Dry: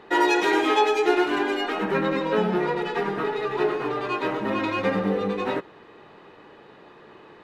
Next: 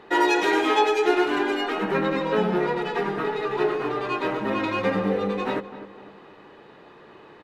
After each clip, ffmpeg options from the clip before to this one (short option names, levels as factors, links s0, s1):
-filter_complex "[0:a]asplit=2[s0][s1];[s1]adelay=253,lowpass=f=1800:p=1,volume=0.224,asplit=2[s2][s3];[s3]adelay=253,lowpass=f=1800:p=1,volume=0.45,asplit=2[s4][s5];[s5]adelay=253,lowpass=f=1800:p=1,volume=0.45,asplit=2[s6][s7];[s7]adelay=253,lowpass=f=1800:p=1,volume=0.45[s8];[s0][s2][s4][s6][s8]amix=inputs=5:normalize=0"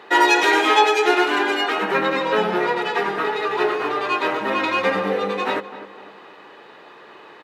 -af "highpass=f=730:p=1,volume=2.51"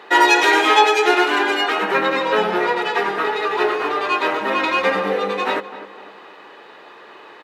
-af "highpass=f=250:p=1,volume=1.33"